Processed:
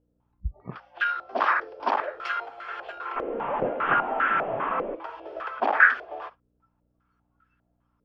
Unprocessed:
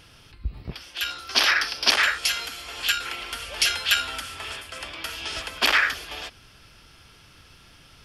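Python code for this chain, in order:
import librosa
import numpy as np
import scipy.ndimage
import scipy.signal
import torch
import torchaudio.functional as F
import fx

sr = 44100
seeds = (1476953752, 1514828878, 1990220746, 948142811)

y = fx.delta_mod(x, sr, bps=16000, step_db=-21.0, at=(3.16, 4.95))
y = fx.dmg_buzz(y, sr, base_hz=60.0, harmonics=5, level_db=-49.0, tilt_db=-3, odd_only=False)
y = fx.noise_reduce_blind(y, sr, reduce_db=23)
y = fx.filter_held_lowpass(y, sr, hz=5.0, low_hz=490.0, high_hz=1500.0)
y = y * 10.0 ** (-1.5 / 20.0)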